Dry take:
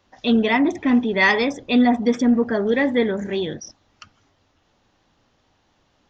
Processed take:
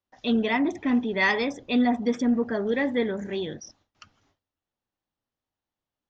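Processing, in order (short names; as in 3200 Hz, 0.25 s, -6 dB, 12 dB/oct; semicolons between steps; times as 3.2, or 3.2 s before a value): gate with hold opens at -51 dBFS; gain -6 dB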